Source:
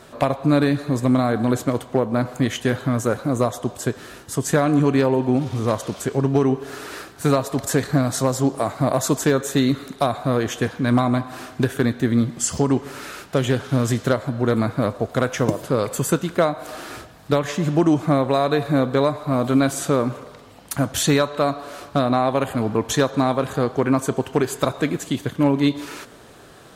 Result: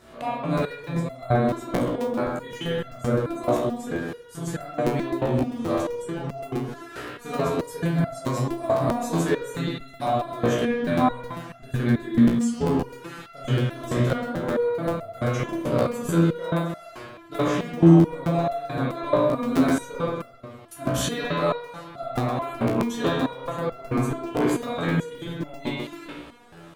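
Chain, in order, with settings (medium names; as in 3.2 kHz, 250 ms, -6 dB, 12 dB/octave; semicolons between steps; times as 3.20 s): spring tank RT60 1.2 s, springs 30/48 ms, chirp 40 ms, DRR -6.5 dB; crackling interface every 0.13 s, samples 256, repeat, from 0.57 s; resonator arpeggio 4.6 Hz 60–680 Hz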